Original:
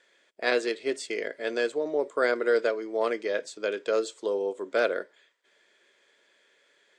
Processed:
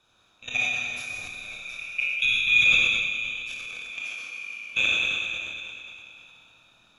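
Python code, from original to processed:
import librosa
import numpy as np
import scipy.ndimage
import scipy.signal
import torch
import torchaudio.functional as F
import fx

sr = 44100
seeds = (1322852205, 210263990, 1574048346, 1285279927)

y = fx.band_swap(x, sr, width_hz=2000)
y = fx.echo_stepped(y, sr, ms=151, hz=3300.0, octaves=-1.4, feedback_pct=70, wet_db=-5.5)
y = fx.level_steps(y, sr, step_db=23)
y = fx.dmg_noise_band(y, sr, seeds[0], low_hz=130.0, high_hz=1200.0, level_db=-75.0)
y = fx.peak_eq(y, sr, hz=410.0, db=-8.0, octaves=0.51)
y = fx.rev_schroeder(y, sr, rt60_s=2.8, comb_ms=25, drr_db=-5.5)
y = fx.transient(y, sr, attack_db=-2, sustain_db=10, at=(3.39, 3.85))
y = fx.sustainer(y, sr, db_per_s=27.0)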